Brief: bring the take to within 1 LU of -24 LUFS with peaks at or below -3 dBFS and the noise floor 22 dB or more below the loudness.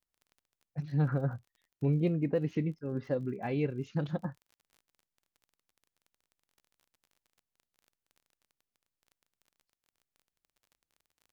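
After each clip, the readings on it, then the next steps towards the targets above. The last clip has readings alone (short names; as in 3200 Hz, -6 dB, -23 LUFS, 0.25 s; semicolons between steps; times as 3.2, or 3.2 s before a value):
ticks 29/s; loudness -33.0 LUFS; peak -18.5 dBFS; loudness target -24.0 LUFS
-> de-click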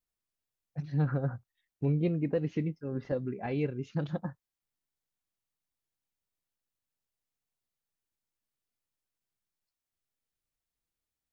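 ticks 0/s; loudness -33.0 LUFS; peak -18.5 dBFS; loudness target -24.0 LUFS
-> gain +9 dB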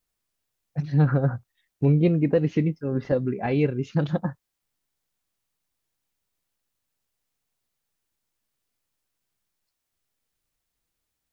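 loudness -24.0 LUFS; peak -9.5 dBFS; noise floor -82 dBFS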